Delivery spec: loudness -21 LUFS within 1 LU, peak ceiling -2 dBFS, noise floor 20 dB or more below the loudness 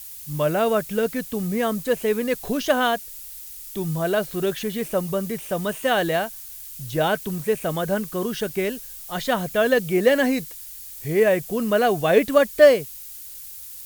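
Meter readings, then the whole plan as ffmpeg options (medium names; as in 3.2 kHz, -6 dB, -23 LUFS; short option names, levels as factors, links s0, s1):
noise floor -39 dBFS; noise floor target -43 dBFS; loudness -22.5 LUFS; peak level -1.5 dBFS; loudness target -21.0 LUFS
-> -af "afftdn=nr=6:nf=-39"
-af "volume=1.19,alimiter=limit=0.794:level=0:latency=1"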